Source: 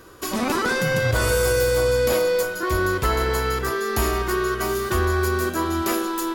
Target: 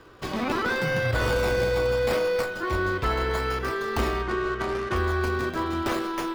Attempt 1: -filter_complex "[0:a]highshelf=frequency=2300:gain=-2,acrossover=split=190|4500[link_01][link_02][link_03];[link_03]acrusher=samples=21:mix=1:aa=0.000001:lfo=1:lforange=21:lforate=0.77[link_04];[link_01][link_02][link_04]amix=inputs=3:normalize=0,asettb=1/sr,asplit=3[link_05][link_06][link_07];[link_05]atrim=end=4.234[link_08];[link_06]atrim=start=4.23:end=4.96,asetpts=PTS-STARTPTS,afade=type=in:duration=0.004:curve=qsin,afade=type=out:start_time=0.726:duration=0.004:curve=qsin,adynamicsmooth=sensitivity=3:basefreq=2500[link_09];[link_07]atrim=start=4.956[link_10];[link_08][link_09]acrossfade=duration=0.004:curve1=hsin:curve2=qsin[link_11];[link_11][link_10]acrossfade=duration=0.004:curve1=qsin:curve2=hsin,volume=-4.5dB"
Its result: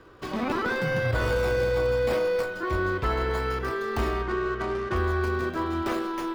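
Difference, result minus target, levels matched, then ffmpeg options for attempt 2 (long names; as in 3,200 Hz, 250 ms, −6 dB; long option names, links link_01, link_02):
4,000 Hz band −3.5 dB
-filter_complex "[0:a]highshelf=frequency=2300:gain=4,acrossover=split=190|4500[link_01][link_02][link_03];[link_03]acrusher=samples=21:mix=1:aa=0.000001:lfo=1:lforange=21:lforate=0.77[link_04];[link_01][link_02][link_04]amix=inputs=3:normalize=0,asettb=1/sr,asplit=3[link_05][link_06][link_07];[link_05]atrim=end=4.234[link_08];[link_06]atrim=start=4.23:end=4.96,asetpts=PTS-STARTPTS,afade=type=in:duration=0.004:curve=qsin,afade=type=out:start_time=0.726:duration=0.004:curve=qsin,adynamicsmooth=sensitivity=3:basefreq=2500[link_09];[link_07]atrim=start=4.956[link_10];[link_08][link_09]acrossfade=duration=0.004:curve1=hsin:curve2=qsin[link_11];[link_11][link_10]acrossfade=duration=0.004:curve1=qsin:curve2=hsin,volume=-4.5dB"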